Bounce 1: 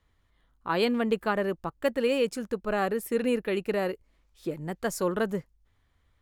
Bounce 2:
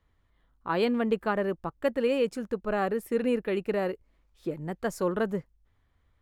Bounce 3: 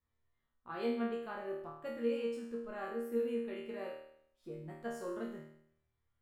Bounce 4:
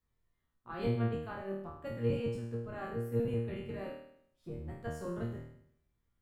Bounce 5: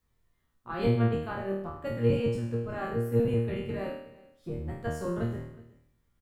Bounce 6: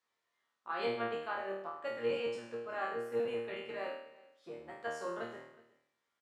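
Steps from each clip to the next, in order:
high shelf 3000 Hz -8 dB
resonator bank D#2 fifth, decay 0.69 s; gain +1.5 dB
octaver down 1 oct, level +4 dB
echo 0.369 s -22.5 dB; gain +7 dB
BPF 630–6300 Hz

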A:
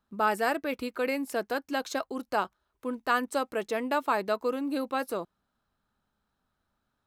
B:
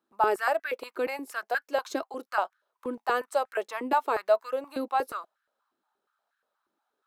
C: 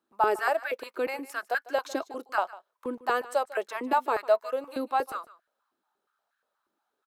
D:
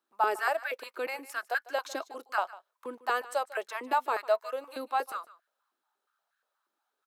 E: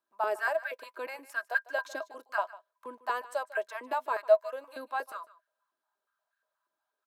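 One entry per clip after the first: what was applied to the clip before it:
stepped high-pass 8.4 Hz 330–1600 Hz; gain -3.5 dB
echo 0.15 s -18.5 dB
HPF 770 Hz 6 dB/oct
small resonant body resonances 630/1000/1600 Hz, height 13 dB, ringing for 75 ms; gain -6 dB

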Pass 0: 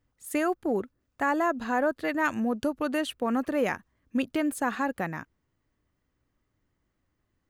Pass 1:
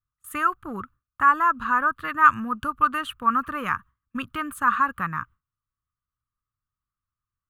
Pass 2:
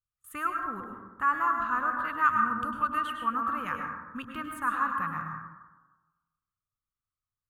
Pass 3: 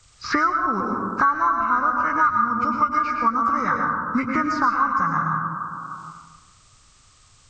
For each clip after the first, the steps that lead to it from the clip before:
EQ curve 120 Hz 0 dB, 370 Hz -19 dB, 740 Hz -20 dB, 1200 Hz +11 dB, 2000 Hz -9 dB, 2900 Hz -5 dB, 5100 Hz -18 dB, 12000 Hz -7 dB; gate with hold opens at -49 dBFS; gain +8 dB
plate-style reverb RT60 1.2 s, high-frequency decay 0.35×, pre-delay 90 ms, DRR 2 dB; gain -8.5 dB
nonlinear frequency compression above 1300 Hz 1.5:1; three-band squash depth 100%; gain +8.5 dB

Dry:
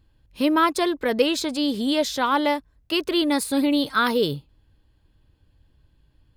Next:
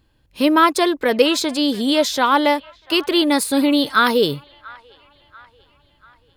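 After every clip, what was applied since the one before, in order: low shelf 130 Hz -10 dB; band-limited delay 0.689 s, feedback 49%, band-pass 1500 Hz, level -22 dB; gain +6 dB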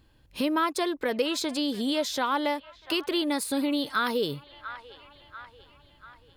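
compressor 2:1, threshold -33 dBFS, peak gain reduction 13.5 dB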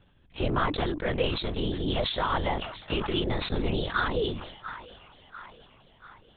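LPC vocoder at 8 kHz whisper; sustainer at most 69 dB/s; gain -1 dB

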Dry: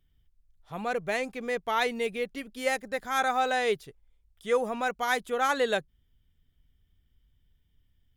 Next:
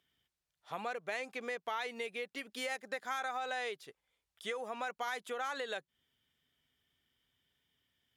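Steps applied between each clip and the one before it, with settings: limiter -19.5 dBFS, peak gain reduction 5.5 dB; compressor 10:1, threshold -37 dBFS, peak gain reduction 13.5 dB; weighting filter A; gain +3 dB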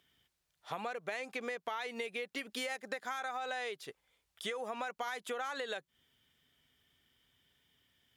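compressor 4:1, threshold -43 dBFS, peak gain reduction 9 dB; gain +6.5 dB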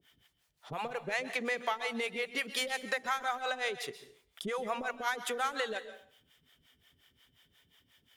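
in parallel at -3.5 dB: soft clip -34 dBFS, distortion -14 dB; on the sum: harmonic tremolo 5.6 Hz, depth 100%, crossover 460 Hz; plate-style reverb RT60 0.54 s, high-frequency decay 0.9×, pre-delay 0.115 s, DRR 11 dB; gain +5.5 dB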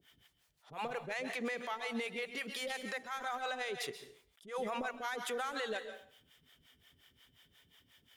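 limiter -30 dBFS, peak gain reduction 11.5 dB; attack slew limiter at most 180 dB/s; gain +1 dB

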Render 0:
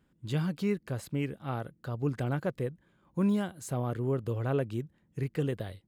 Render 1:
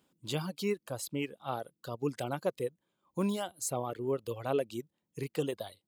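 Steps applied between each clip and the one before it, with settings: reverb removal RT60 1.6 s; HPF 850 Hz 6 dB/oct; bell 1700 Hz -12.5 dB 0.9 oct; gain +8.5 dB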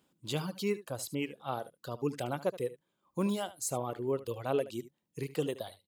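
echo 74 ms -16 dB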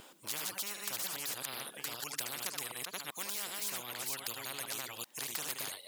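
reverse delay 0.388 s, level -4 dB; HPF 530 Hz 12 dB/oct; spectral compressor 10:1; gain +4.5 dB

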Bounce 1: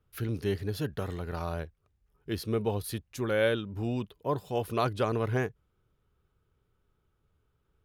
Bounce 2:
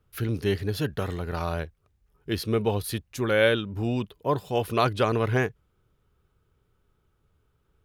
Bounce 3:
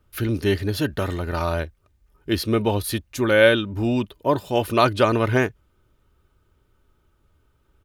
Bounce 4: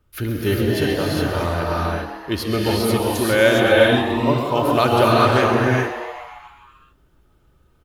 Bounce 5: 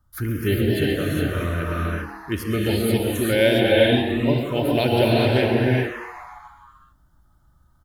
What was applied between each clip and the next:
dynamic EQ 2600 Hz, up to +4 dB, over -45 dBFS, Q 0.71; gain +4.5 dB
comb 3.3 ms, depth 38%; gain +5 dB
on a send: frequency-shifting echo 0.132 s, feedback 64%, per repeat +120 Hz, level -11.5 dB; on the sum: non-linear reverb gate 0.44 s rising, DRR -3 dB; gain -1 dB
envelope phaser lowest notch 430 Hz, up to 1200 Hz, full sweep at -14 dBFS

